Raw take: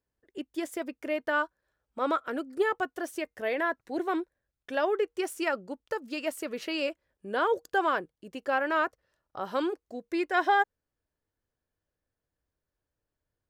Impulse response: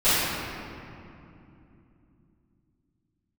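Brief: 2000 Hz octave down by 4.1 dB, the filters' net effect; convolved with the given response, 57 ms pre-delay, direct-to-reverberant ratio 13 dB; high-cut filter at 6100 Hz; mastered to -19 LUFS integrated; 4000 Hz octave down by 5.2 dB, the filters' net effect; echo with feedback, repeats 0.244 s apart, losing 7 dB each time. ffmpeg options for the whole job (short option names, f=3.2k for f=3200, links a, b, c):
-filter_complex "[0:a]lowpass=6.1k,equalizer=f=2k:t=o:g=-5,equalizer=f=4k:t=o:g=-4.5,aecho=1:1:244|488|732|976|1220:0.447|0.201|0.0905|0.0407|0.0183,asplit=2[a][b];[1:a]atrim=start_sample=2205,adelay=57[c];[b][c]afir=irnorm=-1:irlink=0,volume=-32.5dB[d];[a][d]amix=inputs=2:normalize=0,volume=12.5dB"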